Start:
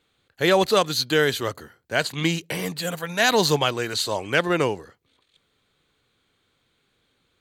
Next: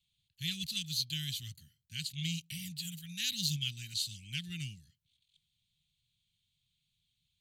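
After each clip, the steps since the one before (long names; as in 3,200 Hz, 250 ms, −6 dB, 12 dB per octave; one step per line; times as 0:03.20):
elliptic band-stop filter 160–2,900 Hz, stop band 60 dB
level −8.5 dB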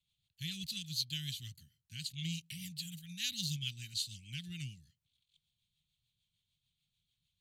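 rotating-speaker cabinet horn 6.7 Hz
level −1 dB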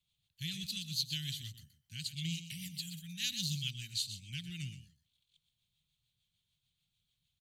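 single-tap delay 123 ms −11.5 dB
level +1 dB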